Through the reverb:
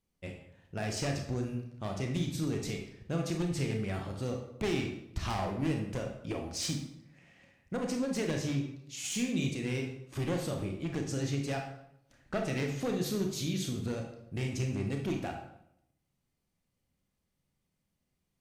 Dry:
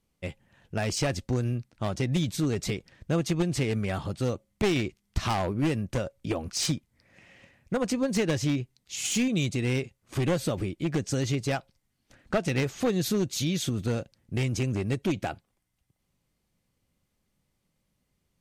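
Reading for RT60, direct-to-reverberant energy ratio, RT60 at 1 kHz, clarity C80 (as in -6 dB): 0.75 s, 2.0 dB, 0.70 s, 9.0 dB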